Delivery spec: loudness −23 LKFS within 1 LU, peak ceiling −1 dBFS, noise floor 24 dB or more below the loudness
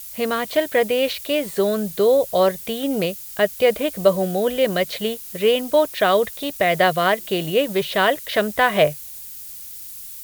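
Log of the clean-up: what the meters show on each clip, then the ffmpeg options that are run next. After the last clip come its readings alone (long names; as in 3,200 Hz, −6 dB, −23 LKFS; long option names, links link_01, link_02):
background noise floor −36 dBFS; target noise floor −44 dBFS; integrated loudness −20.0 LKFS; sample peak −3.0 dBFS; target loudness −23.0 LKFS
→ -af "afftdn=noise_reduction=8:noise_floor=-36"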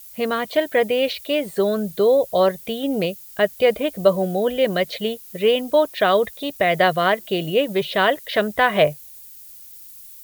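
background noise floor −42 dBFS; target noise floor −44 dBFS
→ -af "afftdn=noise_reduction=6:noise_floor=-42"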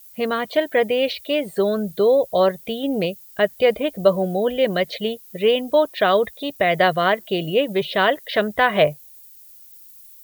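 background noise floor −46 dBFS; integrated loudness −20.5 LKFS; sample peak −3.0 dBFS; target loudness −23.0 LKFS
→ -af "volume=-2.5dB"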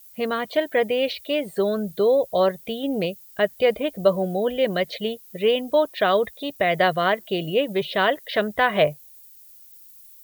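integrated loudness −23.0 LKFS; sample peak −5.5 dBFS; background noise floor −48 dBFS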